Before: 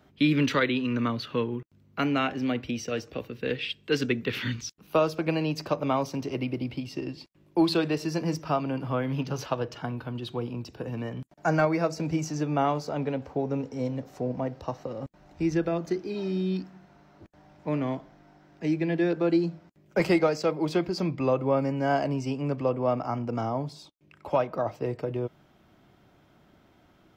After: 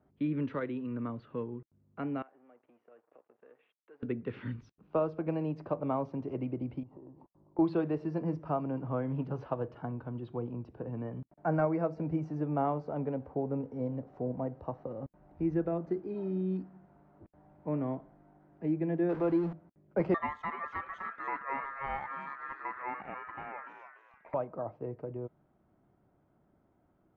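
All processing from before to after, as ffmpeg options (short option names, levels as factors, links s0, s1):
-filter_complex "[0:a]asettb=1/sr,asplit=3[s0][s1][s2];[s0]atrim=end=2.224[s3];[s1]atrim=start=2.22:end=4.03,asetpts=PTS-STARTPTS,afade=t=in:d=0.004:c=qsin,afade=t=out:st=1.806:d=0.004:c=qsin,acompressor=threshold=0.00708:ratio=3:attack=3.2:release=140:knee=1:detection=peak,aeval=exprs='sgn(val(0))*max(abs(val(0))-0.00237,0)':c=same,highpass=510,lowpass=2100[s4];[s2]atrim=start=4.026[s5];[s3][s4]acrossfade=d=0.004:c1=hsin:c2=qsin[s6];[s6][s5]acrossfade=d=0.004:c1=qsin:c2=hsin,asettb=1/sr,asplit=3[s7][s8][s9];[s7]atrim=end=6.834[s10];[s8]atrim=start=6.83:end=7.59,asetpts=PTS-STARTPTS,afade=t=in:d=0.004:c=qsin,afade=t=out:st=0.756:d=0.004:c=qsin,lowpass=f=930:t=q:w=3.5,acompressor=threshold=0.00562:ratio=4:attack=3.2:release=140:knee=1:detection=peak[s11];[s9]atrim=start=7.586[s12];[s10][s11]acrossfade=d=0.004:c1=hsin:c2=qsin[s13];[s13][s12]acrossfade=d=0.004:c1=qsin:c2=hsin,asettb=1/sr,asplit=3[s14][s15][s16];[s14]atrim=end=19.094[s17];[s15]atrim=start=19.09:end=19.53,asetpts=PTS-STARTPTS,afade=t=in:d=0.004:c=qsin,afade=t=out:st=0.436:d=0.004:c=qsin,aeval=exprs='val(0)+0.5*0.0299*sgn(val(0))':c=same,tiltshelf=f=690:g=-3[s18];[s16]atrim=start=19.526[s19];[s17][s18]acrossfade=d=0.004:c1=hsin:c2=qsin[s20];[s20][s19]acrossfade=d=0.004:c1=qsin:c2=hsin,asettb=1/sr,asplit=3[s21][s22][s23];[s21]atrim=end=20.144[s24];[s22]atrim=start=20.14:end=24.34,asetpts=PTS-STARTPTS,afade=t=in:d=0.004:c=qsin,afade=t=out:st=4.196:d=0.004:c=qsin,aeval=exprs='val(0)*sin(2*PI*1500*n/s)':c=same,asplit=5[s25][s26][s27][s28][s29];[s26]adelay=291,afreqshift=140,volume=0.422[s30];[s27]adelay=582,afreqshift=280,volume=0.148[s31];[s28]adelay=873,afreqshift=420,volume=0.0519[s32];[s29]adelay=1164,afreqshift=560,volume=0.018[s33];[s25][s30][s31][s32][s33]amix=inputs=5:normalize=0,atrim=end_sample=185220[s34];[s23]atrim=start=24.336[s35];[s24][s34]acrossfade=d=0.004:c1=hsin:c2=qsin[s36];[s36][s35]acrossfade=d=0.004:c1=qsin:c2=hsin,lowpass=1100,dynaudnorm=f=430:g=21:m=1.68,volume=0.355"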